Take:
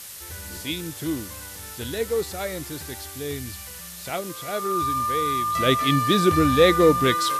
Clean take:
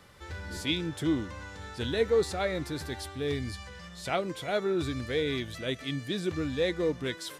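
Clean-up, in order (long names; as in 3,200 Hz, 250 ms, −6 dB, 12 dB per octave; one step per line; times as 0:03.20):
notch filter 1,200 Hz, Q 30
noise reduction from a noise print 6 dB
level correction −12 dB, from 0:05.55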